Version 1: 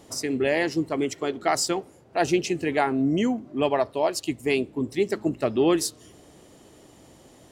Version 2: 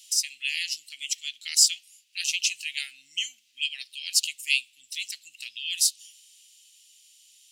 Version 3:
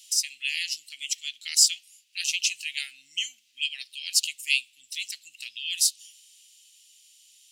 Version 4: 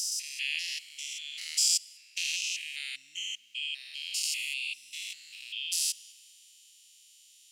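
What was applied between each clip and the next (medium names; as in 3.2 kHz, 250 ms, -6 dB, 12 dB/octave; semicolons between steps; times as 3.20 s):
elliptic high-pass 2.7 kHz, stop band 60 dB; gain riding within 4 dB 2 s; trim +8 dB
no audible change
spectrogram pixelated in time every 200 ms; on a send at -21 dB: reverberation RT60 3.4 s, pre-delay 47 ms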